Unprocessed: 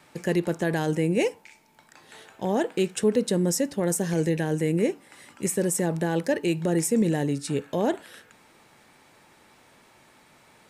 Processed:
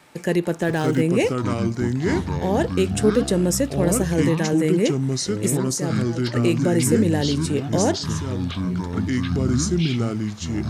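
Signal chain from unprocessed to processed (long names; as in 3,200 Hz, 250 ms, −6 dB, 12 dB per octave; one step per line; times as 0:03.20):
0:05.45–0:06.34: volume swells 518 ms
delay with pitch and tempo change per echo 479 ms, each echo −5 semitones, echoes 3
0:00.62–0:01.02: windowed peak hold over 3 samples
level +3.5 dB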